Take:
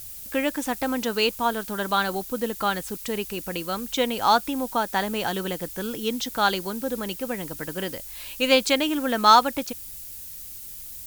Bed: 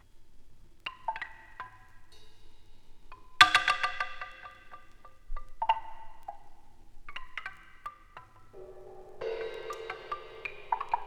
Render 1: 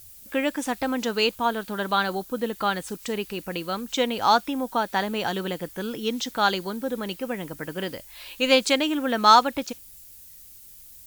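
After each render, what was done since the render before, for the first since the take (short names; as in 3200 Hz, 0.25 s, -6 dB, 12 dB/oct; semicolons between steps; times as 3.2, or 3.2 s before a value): noise print and reduce 8 dB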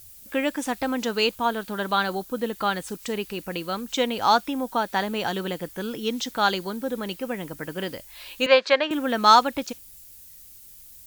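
8.46–8.91 speaker cabinet 470–4500 Hz, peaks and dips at 570 Hz +7 dB, 1100 Hz +7 dB, 1700 Hz +9 dB, 3200 Hz -4 dB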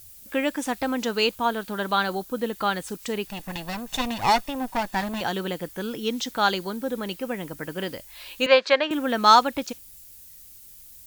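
3.27–5.21 minimum comb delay 1.1 ms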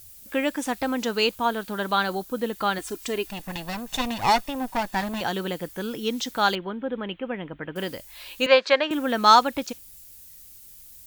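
2.78–3.31 comb 2.9 ms; 6.55–7.76 elliptic low-pass 3300 Hz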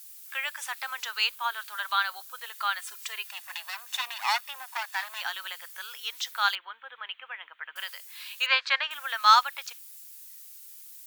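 HPF 1100 Hz 24 dB/oct; dynamic EQ 6800 Hz, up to -4 dB, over -42 dBFS, Q 0.99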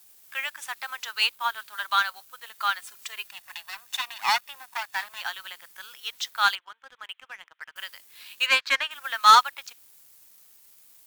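sample leveller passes 2; upward expander 1.5:1, over -30 dBFS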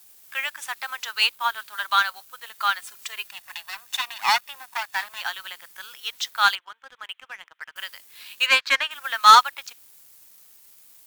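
gain +3 dB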